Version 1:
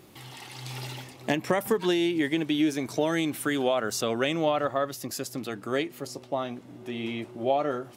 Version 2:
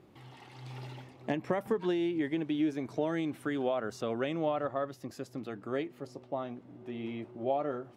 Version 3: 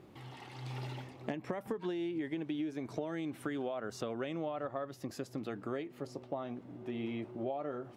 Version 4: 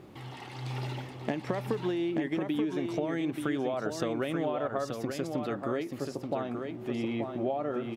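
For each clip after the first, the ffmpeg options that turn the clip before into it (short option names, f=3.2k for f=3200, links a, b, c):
-af "lowpass=f=1.3k:p=1,volume=-5dB"
-af "acompressor=threshold=-37dB:ratio=6,volume=2.5dB"
-af "aecho=1:1:881:0.531,volume=6dB"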